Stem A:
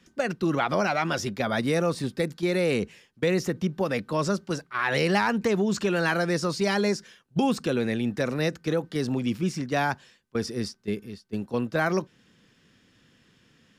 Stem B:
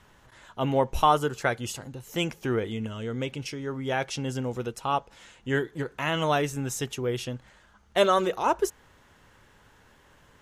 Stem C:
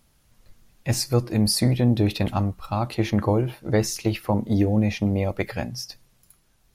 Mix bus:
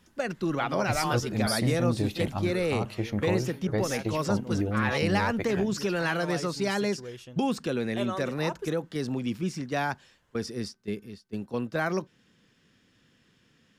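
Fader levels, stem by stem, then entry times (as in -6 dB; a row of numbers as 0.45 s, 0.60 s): -3.5 dB, -12.5 dB, -8.0 dB; 0.00 s, 0.00 s, 0.00 s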